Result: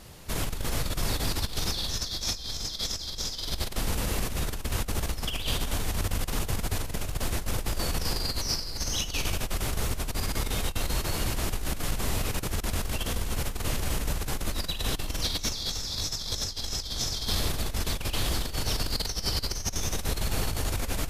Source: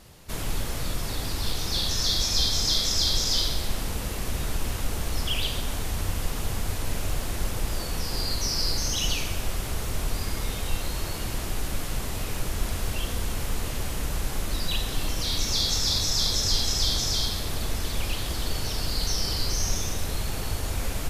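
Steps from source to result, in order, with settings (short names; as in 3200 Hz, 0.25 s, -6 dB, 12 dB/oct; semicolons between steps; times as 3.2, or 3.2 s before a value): negative-ratio compressor -28 dBFS, ratio -0.5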